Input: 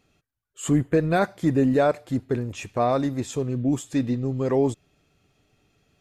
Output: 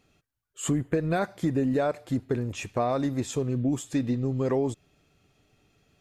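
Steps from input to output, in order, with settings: compressor, threshold -22 dBFS, peak gain reduction 7 dB

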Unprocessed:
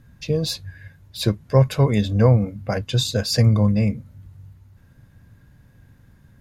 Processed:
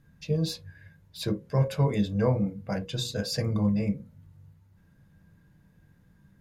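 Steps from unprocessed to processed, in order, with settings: notches 60/120/180/240/300/360/420/480/540 Hz; on a send: reverb, pre-delay 3 ms, DRR 5.5 dB; on the sum: gain -9 dB

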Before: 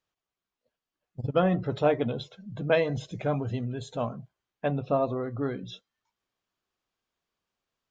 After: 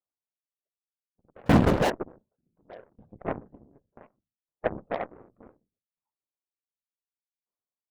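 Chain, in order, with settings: bin magnitudes rounded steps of 15 dB; LPF 1100 Hz 24 dB/oct; notches 60/120 Hz; 1.46–1.9 sample leveller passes 5; whisperiser; low shelf 200 Hz -7 dB; added harmonics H 3 -23 dB, 7 -20 dB, 8 -32 dB, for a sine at -10.5 dBFS; maximiser +19 dB; dB-ramp tremolo decaying 0.67 Hz, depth 32 dB; gain -6.5 dB

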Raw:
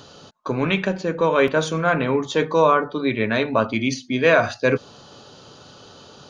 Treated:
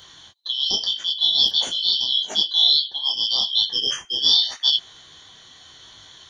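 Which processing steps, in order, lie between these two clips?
four-band scrambler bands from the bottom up 3412; high shelf 5900 Hz +9.5 dB; detuned doubles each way 29 cents

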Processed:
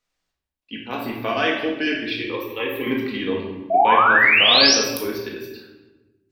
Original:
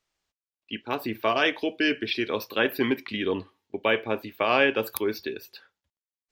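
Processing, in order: 2.15–2.87 fixed phaser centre 1000 Hz, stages 8; 3.7–4.75 painted sound rise 640–6000 Hz -17 dBFS; shoebox room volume 560 m³, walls mixed, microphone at 1.9 m; gain -2 dB

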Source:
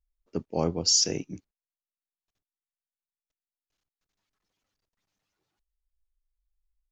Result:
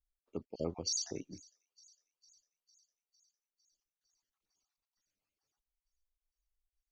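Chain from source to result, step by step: random spectral dropouts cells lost 39%; bell 150 Hz -5.5 dB 0.95 oct; thin delay 0.454 s, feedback 65%, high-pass 3700 Hz, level -23 dB; gain -8 dB

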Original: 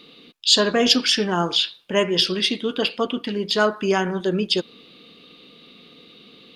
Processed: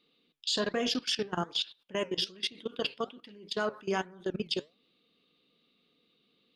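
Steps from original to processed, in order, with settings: level quantiser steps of 21 dB; flange 1.2 Hz, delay 1.2 ms, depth 6.5 ms, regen +84%; gain -4 dB

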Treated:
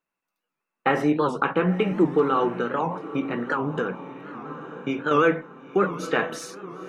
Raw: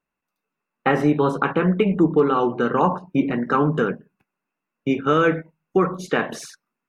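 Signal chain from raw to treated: low shelf 180 Hz -10 dB; diffused feedback echo 0.947 s, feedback 42%, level -14.5 dB; reverb RT60 0.20 s, pre-delay 6 ms, DRR 12.5 dB; 2.53–5.12 compressor, threshold -20 dBFS, peak gain reduction 6.5 dB; record warp 78 rpm, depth 160 cents; gain -1.5 dB

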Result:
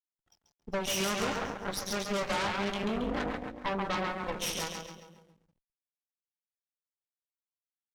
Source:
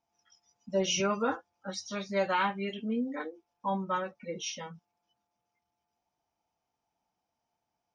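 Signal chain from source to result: compressor 3:1, threshold -33 dBFS, peak gain reduction 7.5 dB; split-band echo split 460 Hz, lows 0.197 s, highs 0.137 s, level -4 dB; backlash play -56 dBFS; added harmonics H 8 -11 dB, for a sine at -21 dBFS

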